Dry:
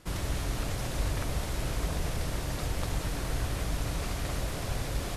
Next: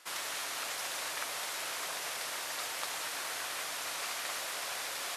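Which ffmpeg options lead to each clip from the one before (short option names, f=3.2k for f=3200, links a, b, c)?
-af "highpass=1k,volume=3.5dB"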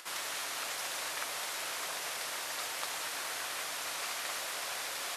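-af "acompressor=mode=upward:threshold=-45dB:ratio=2.5"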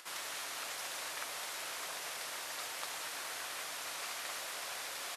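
-af "aresample=32000,aresample=44100,volume=-4dB"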